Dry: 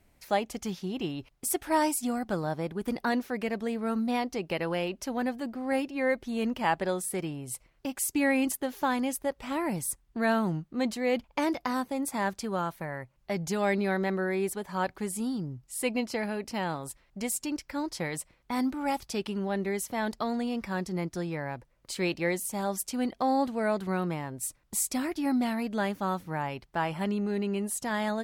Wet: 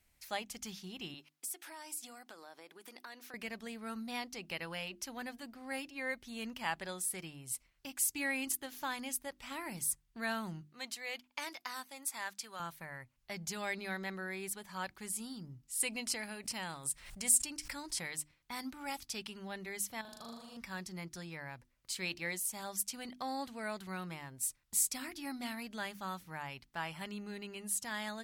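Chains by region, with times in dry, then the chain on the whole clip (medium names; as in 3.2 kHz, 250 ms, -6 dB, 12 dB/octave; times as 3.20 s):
1.14–3.34 s: high-pass 300 Hz 24 dB/octave + compression 4:1, threshold -37 dBFS
10.61–12.60 s: high-pass 210 Hz 6 dB/octave + bass shelf 420 Hz -12 dB
15.80–18.11 s: peaking EQ 8.9 kHz +9.5 dB 0.49 oct + swell ahead of each attack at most 83 dB/s
20.01–20.57 s: peaking EQ 2 kHz -14.5 dB 0.62 oct + compression 2:1, threshold -42 dBFS + flutter echo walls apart 6.7 m, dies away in 1.2 s
whole clip: amplifier tone stack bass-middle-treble 5-5-5; hum notches 50/100/150/200/250/300/350 Hz; trim +4.5 dB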